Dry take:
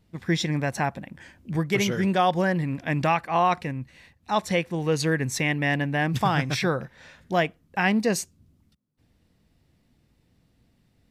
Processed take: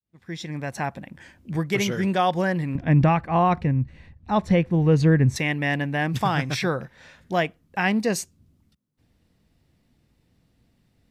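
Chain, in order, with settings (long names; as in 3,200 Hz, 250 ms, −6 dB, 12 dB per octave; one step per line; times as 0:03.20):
fade in at the beginning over 1.06 s
0:02.75–0:05.36: RIAA equalisation playback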